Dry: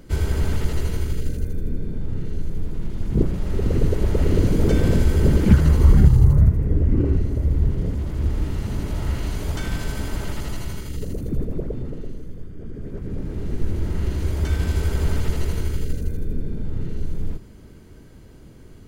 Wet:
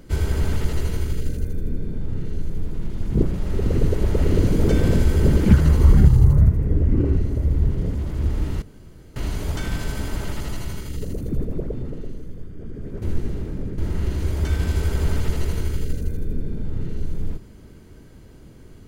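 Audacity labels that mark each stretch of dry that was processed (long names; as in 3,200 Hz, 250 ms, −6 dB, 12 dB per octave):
8.620000	9.160000	fill with room tone
13.020000	13.780000	reverse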